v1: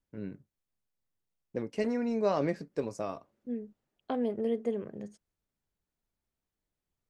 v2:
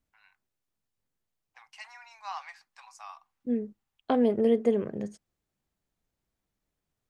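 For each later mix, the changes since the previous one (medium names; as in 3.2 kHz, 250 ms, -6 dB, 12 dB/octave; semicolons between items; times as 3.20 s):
first voice: add rippled Chebyshev high-pass 760 Hz, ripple 3 dB; second voice +7.5 dB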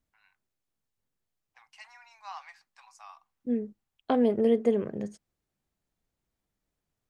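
first voice -4.0 dB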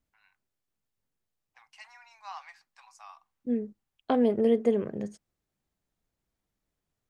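no change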